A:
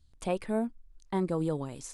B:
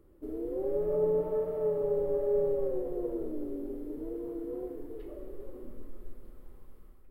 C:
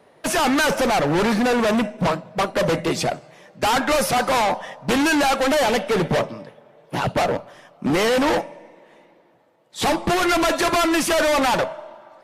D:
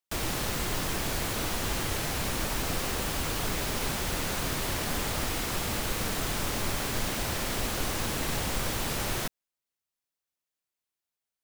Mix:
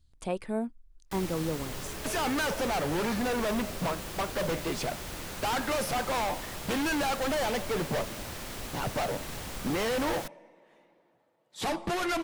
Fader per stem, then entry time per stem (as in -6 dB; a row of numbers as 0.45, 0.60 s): -1.5, -18.5, -11.0, -8.5 dB; 0.00, 1.10, 1.80, 1.00 s